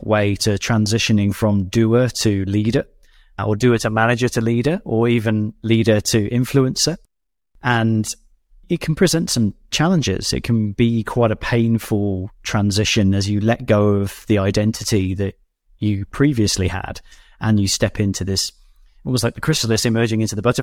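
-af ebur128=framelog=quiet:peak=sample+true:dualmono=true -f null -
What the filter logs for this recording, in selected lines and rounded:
Integrated loudness:
  I:         -15.4 LUFS
  Threshold: -25.7 LUFS
Loudness range:
  LRA:         2.5 LU
  Threshold: -35.9 LUFS
  LRA low:   -17.3 LUFS
  LRA high:  -14.7 LUFS
Sample peak:
  Peak:       -2.2 dBFS
True peak:
  Peak:       -2.2 dBFS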